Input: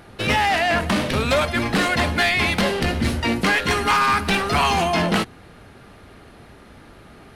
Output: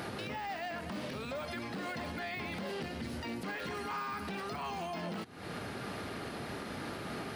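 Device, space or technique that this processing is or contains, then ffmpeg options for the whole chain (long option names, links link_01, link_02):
broadcast voice chain: -af "highpass=120,deesser=0.75,acompressor=threshold=-39dB:ratio=4,equalizer=frequency=4800:width_type=o:width=0.35:gain=4,alimiter=level_in=14.5dB:limit=-24dB:level=0:latency=1:release=228,volume=-14.5dB,volume=7.5dB"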